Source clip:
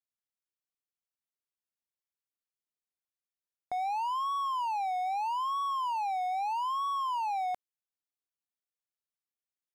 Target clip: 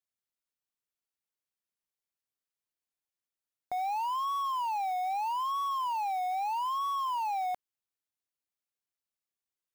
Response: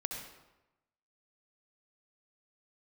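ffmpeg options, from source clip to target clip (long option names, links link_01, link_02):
-af "acrusher=bits=6:mode=log:mix=0:aa=0.000001"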